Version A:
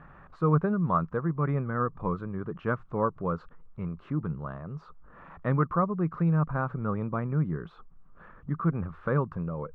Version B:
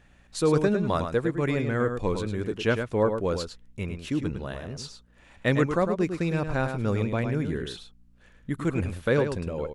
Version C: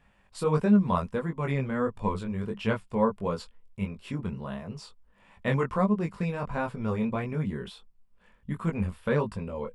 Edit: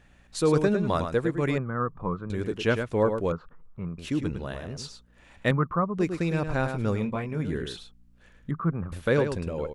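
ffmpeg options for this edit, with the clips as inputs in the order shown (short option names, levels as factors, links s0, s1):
-filter_complex "[0:a]asplit=4[s0][s1][s2][s3];[1:a]asplit=6[s4][s5][s6][s7][s8][s9];[s4]atrim=end=1.582[s10];[s0]atrim=start=1.578:end=2.302[s11];[s5]atrim=start=2.298:end=3.322[s12];[s1]atrim=start=3.318:end=3.982[s13];[s6]atrim=start=3.978:end=5.512[s14];[s2]atrim=start=5.508:end=5.982[s15];[s7]atrim=start=5.978:end=7.12[s16];[2:a]atrim=start=6.88:end=7.53[s17];[s8]atrim=start=7.29:end=8.512[s18];[s3]atrim=start=8.508:end=8.922[s19];[s9]atrim=start=8.918[s20];[s10][s11]acrossfade=d=0.004:c1=hsin:c2=hsin[s21];[s21][s12]acrossfade=d=0.004:c1=hsin:c2=hsin[s22];[s22][s13]acrossfade=d=0.004:c1=hsin:c2=hsin[s23];[s23][s14]acrossfade=d=0.004:c1=hsin:c2=hsin[s24];[s24][s15]acrossfade=d=0.004:c1=hsin:c2=hsin[s25];[s25][s16]acrossfade=d=0.004:c1=hsin:c2=hsin[s26];[s26][s17]acrossfade=d=0.24:c1=tri:c2=tri[s27];[s27][s18]acrossfade=d=0.24:c1=tri:c2=tri[s28];[s28][s19]acrossfade=d=0.004:c1=hsin:c2=hsin[s29];[s29][s20]acrossfade=d=0.004:c1=hsin:c2=hsin"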